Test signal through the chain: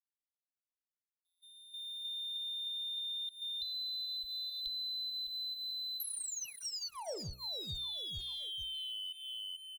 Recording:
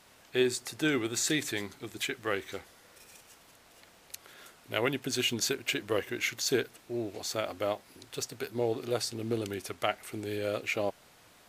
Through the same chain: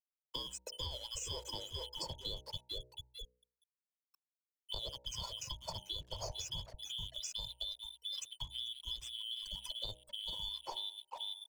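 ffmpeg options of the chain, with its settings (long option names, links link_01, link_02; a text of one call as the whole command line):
ffmpeg -i in.wav -filter_complex "[0:a]afftfilt=real='real(if(lt(b,272),68*(eq(floor(b/68),0)*1+eq(floor(b/68),1)*3+eq(floor(b/68),2)*0+eq(floor(b/68),3)*2)+mod(b,68),b),0)':imag='imag(if(lt(b,272),68*(eq(floor(b/68),0)*1+eq(floor(b/68),1)*3+eq(floor(b/68),2)*0+eq(floor(b/68),3)*2)+mod(b,68),b),0)':win_size=2048:overlap=0.75,acrossover=split=110|4300[link_01][link_02][link_03];[link_03]alimiter=level_in=5.5dB:limit=-24dB:level=0:latency=1:release=460,volume=-5.5dB[link_04];[link_01][link_02][link_04]amix=inputs=3:normalize=0,aecho=1:1:2:0.59,asplit=2[link_05][link_06];[link_06]aecho=0:1:439|878|1317|1756:0.316|0.133|0.0558|0.0234[link_07];[link_05][link_07]amix=inputs=2:normalize=0,afftfilt=real='re*gte(hypot(re,im),0.02)':imag='im*gte(hypot(re,im),0.02)':win_size=1024:overlap=0.75,asubboost=boost=4.5:cutoff=120,acompressor=threshold=-39dB:ratio=6,asuperstop=centerf=1700:order=4:qfactor=0.68,aeval=exprs='sgn(val(0))*max(abs(val(0))-0.00126,0)':channel_layout=same,acrossover=split=100|440[link_08][link_09][link_10];[link_08]acompressor=threshold=-51dB:ratio=4[link_11];[link_09]acompressor=threshold=-57dB:ratio=4[link_12];[link_10]acompressor=threshold=-44dB:ratio=4[link_13];[link_11][link_12][link_13]amix=inputs=3:normalize=0,bandreject=frequency=62.03:width_type=h:width=4,bandreject=frequency=124.06:width_type=h:width=4,bandreject=frequency=186.09:width_type=h:width=4,bandreject=frequency=248.12:width_type=h:width=4,bandreject=frequency=310.15:width_type=h:width=4,bandreject=frequency=372.18:width_type=h:width=4,bandreject=frequency=434.21:width_type=h:width=4,bandreject=frequency=496.24:width_type=h:width=4,bandreject=frequency=558.27:width_type=h:width=4,bandreject=frequency=620.3:width_type=h:width=4,bandreject=frequency=682.33:width_type=h:width=4,bandreject=frequency=744.36:width_type=h:width=4,bandreject=frequency=806.39:width_type=h:width=4,bandreject=frequency=868.42:width_type=h:width=4,bandreject=frequency=930.45:width_type=h:width=4,volume=5.5dB" out.wav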